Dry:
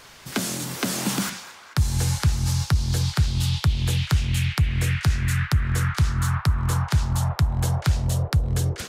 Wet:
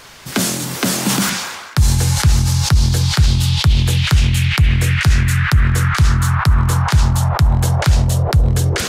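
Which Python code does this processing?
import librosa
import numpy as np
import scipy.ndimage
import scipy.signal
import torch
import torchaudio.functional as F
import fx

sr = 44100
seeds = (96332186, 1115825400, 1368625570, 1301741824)

y = fx.sustainer(x, sr, db_per_s=42.0)
y = y * librosa.db_to_amplitude(7.0)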